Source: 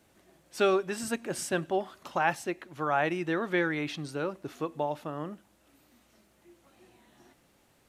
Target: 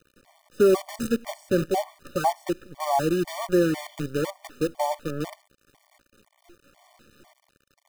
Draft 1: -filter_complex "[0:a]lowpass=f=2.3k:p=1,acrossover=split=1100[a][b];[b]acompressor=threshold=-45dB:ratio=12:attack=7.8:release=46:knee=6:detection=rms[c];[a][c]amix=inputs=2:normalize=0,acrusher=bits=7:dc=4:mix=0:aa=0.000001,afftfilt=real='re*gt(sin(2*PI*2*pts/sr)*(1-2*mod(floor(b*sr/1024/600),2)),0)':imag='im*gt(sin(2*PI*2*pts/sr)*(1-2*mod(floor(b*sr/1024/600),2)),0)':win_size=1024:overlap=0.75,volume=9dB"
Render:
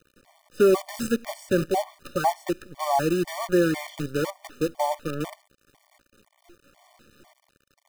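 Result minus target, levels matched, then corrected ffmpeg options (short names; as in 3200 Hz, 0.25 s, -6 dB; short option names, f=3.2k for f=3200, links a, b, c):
compressor: peak gain reduction -9 dB
-filter_complex "[0:a]lowpass=f=2.3k:p=1,acrossover=split=1100[a][b];[b]acompressor=threshold=-55dB:ratio=12:attack=7.8:release=46:knee=6:detection=rms[c];[a][c]amix=inputs=2:normalize=0,acrusher=bits=7:dc=4:mix=0:aa=0.000001,afftfilt=real='re*gt(sin(2*PI*2*pts/sr)*(1-2*mod(floor(b*sr/1024/600),2)),0)':imag='im*gt(sin(2*PI*2*pts/sr)*(1-2*mod(floor(b*sr/1024/600),2)),0)':win_size=1024:overlap=0.75,volume=9dB"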